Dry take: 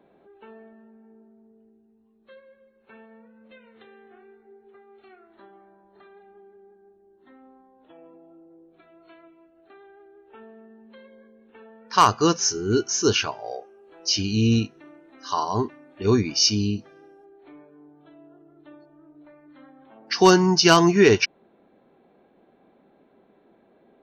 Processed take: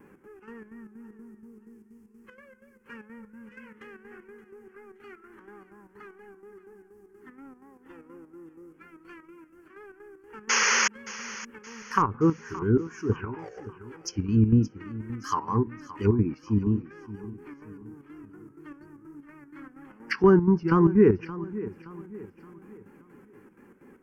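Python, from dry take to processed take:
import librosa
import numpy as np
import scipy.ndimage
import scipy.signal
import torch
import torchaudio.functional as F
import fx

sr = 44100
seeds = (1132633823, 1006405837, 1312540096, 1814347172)

p1 = fx.law_mismatch(x, sr, coded='mu')
p2 = fx.band_shelf(p1, sr, hz=4900.0, db=-12.5, octaves=1.3, at=(11.93, 13.39))
p3 = fx.env_lowpass_down(p2, sr, base_hz=710.0, full_db=-18.5)
p4 = fx.vibrato(p3, sr, rate_hz=4.2, depth_cents=99.0)
p5 = fx.chopper(p4, sr, hz=4.2, depth_pct=65, duty_pct=65)
p6 = fx.spec_paint(p5, sr, seeds[0], shape='noise', start_s=10.49, length_s=0.39, low_hz=380.0, high_hz=6800.0, level_db=-20.0)
p7 = fx.fixed_phaser(p6, sr, hz=1600.0, stages=4)
p8 = p7 + fx.echo_feedback(p7, sr, ms=572, feedback_pct=41, wet_db=-16, dry=0)
y = F.gain(torch.from_numpy(p8), 2.5).numpy()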